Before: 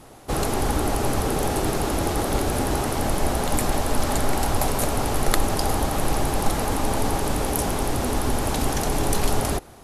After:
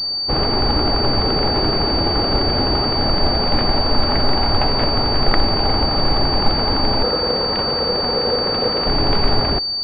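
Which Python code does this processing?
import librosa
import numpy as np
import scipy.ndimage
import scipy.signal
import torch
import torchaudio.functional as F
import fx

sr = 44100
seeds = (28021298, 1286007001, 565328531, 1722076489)

y = fx.ring_mod(x, sr, carrier_hz=490.0, at=(7.03, 8.87))
y = fx.pwm(y, sr, carrier_hz=4600.0)
y = y * librosa.db_to_amplitude(4.5)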